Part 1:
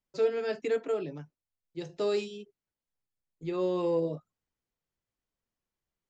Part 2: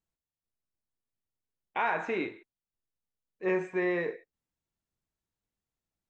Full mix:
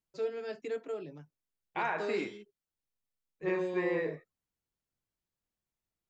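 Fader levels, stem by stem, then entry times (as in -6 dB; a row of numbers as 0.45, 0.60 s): -7.5, -4.0 dB; 0.00, 0.00 s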